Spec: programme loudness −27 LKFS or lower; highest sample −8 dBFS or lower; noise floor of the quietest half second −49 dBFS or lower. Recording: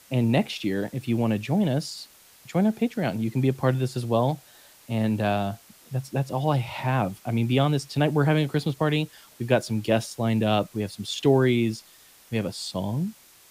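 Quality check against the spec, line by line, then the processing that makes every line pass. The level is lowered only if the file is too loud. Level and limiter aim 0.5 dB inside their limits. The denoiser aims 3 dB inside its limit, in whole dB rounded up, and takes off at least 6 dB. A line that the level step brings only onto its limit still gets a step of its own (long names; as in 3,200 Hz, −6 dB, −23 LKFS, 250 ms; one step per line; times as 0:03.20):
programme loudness −25.5 LKFS: out of spec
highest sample −7.0 dBFS: out of spec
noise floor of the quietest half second −53 dBFS: in spec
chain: level −2 dB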